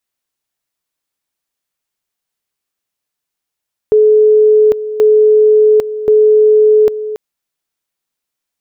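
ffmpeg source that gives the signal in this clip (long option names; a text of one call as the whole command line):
ffmpeg -f lavfi -i "aevalsrc='pow(10,(-4.5-13*gte(mod(t,1.08),0.8))/20)*sin(2*PI*428*t)':duration=3.24:sample_rate=44100" out.wav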